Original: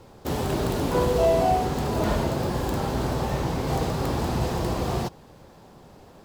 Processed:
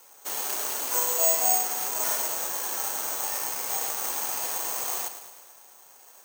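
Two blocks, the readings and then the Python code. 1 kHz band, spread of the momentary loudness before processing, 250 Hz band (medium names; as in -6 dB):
-6.5 dB, 6 LU, -23.0 dB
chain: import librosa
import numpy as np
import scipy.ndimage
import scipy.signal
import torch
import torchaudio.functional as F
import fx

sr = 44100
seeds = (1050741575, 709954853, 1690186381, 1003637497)

p1 = scipy.signal.sosfilt(scipy.signal.bessel(2, 1300.0, 'highpass', norm='mag', fs=sr, output='sos'), x)
p2 = p1 + fx.echo_feedback(p1, sr, ms=107, feedback_pct=59, wet_db=-11, dry=0)
y = (np.kron(scipy.signal.resample_poly(p2, 1, 6), np.eye(6)[0]) * 6)[:len(p2)]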